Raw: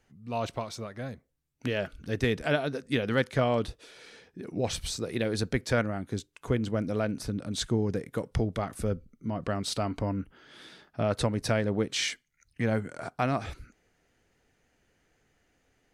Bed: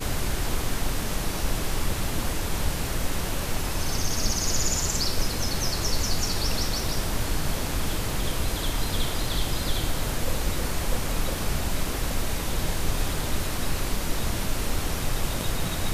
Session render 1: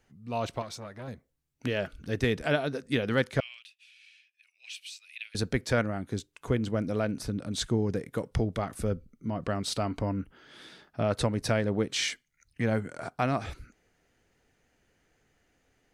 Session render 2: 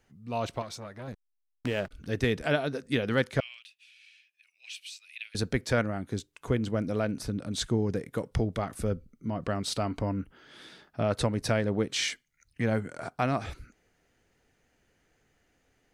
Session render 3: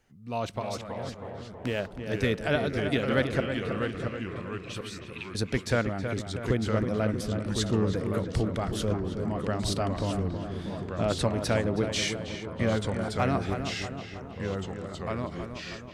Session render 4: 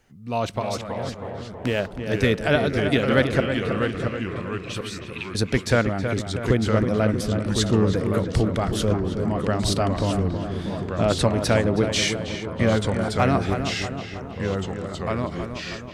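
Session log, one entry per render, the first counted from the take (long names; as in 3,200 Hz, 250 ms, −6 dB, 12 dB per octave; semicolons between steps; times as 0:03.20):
0:00.62–0:01.08: saturating transformer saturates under 710 Hz; 0:03.40–0:05.35: four-pole ladder high-pass 2,400 Hz, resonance 75%
0:01.12–0:01.91: slack as between gear wheels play −36 dBFS
delay with pitch and tempo change per echo 261 ms, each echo −2 semitones, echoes 3, each echo −6 dB; feedback echo with a low-pass in the loop 320 ms, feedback 59%, low-pass 2,400 Hz, level −7.5 dB
level +6.5 dB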